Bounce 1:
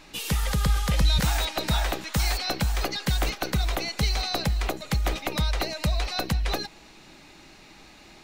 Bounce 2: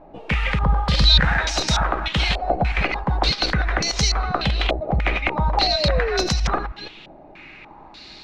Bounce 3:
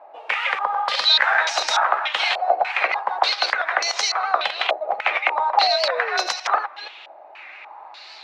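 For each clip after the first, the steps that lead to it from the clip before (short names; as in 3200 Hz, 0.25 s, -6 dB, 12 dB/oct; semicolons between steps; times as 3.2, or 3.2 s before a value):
reverse delay 0.16 s, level -7 dB; painted sound fall, 5.57–6.27, 350–830 Hz -28 dBFS; stepped low-pass 3.4 Hz 690–5900 Hz; gain +3 dB
HPF 670 Hz 24 dB/oct; high shelf 2700 Hz -9.5 dB; record warp 78 rpm, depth 100 cents; gain +6.5 dB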